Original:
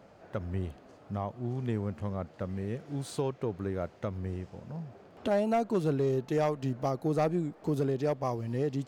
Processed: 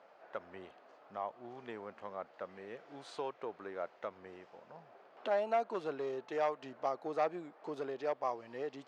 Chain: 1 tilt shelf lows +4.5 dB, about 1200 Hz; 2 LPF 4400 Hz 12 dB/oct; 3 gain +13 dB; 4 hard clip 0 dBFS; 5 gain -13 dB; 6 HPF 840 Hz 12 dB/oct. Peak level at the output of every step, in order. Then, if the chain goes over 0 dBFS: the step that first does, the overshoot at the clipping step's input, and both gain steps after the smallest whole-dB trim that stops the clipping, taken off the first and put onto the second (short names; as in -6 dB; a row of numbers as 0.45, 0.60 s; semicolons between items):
-17.0, -17.0, -4.0, -4.0, -17.0, -20.5 dBFS; no overload